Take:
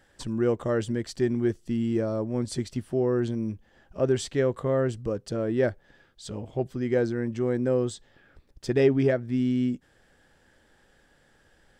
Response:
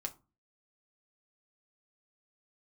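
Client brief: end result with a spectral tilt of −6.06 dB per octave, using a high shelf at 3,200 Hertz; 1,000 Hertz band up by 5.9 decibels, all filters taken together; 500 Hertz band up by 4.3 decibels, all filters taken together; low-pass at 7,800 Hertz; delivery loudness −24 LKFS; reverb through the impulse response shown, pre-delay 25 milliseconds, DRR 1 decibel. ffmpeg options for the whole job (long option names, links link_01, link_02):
-filter_complex "[0:a]lowpass=7800,equalizer=frequency=500:width_type=o:gain=4,equalizer=frequency=1000:width_type=o:gain=6,highshelf=frequency=3200:gain=5.5,asplit=2[link_01][link_02];[1:a]atrim=start_sample=2205,adelay=25[link_03];[link_02][link_03]afir=irnorm=-1:irlink=0,volume=0dB[link_04];[link_01][link_04]amix=inputs=2:normalize=0,volume=-2.5dB"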